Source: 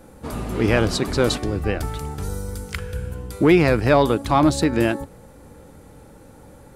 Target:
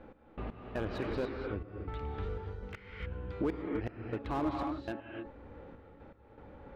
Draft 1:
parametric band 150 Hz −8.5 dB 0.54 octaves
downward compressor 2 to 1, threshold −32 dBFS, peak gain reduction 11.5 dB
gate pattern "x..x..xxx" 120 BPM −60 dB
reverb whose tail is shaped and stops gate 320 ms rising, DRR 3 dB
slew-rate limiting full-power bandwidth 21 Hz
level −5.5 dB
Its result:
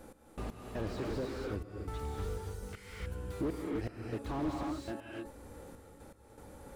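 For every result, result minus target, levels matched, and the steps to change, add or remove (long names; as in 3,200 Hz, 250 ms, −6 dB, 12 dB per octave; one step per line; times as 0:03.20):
slew-rate limiting: distortion +9 dB; 4,000 Hz band +2.5 dB
change: slew-rate limiting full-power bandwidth 44.5 Hz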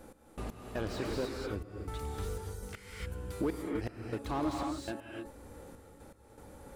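4,000 Hz band +5.5 dB
add after downward compressor: low-pass filter 3,000 Hz 24 dB per octave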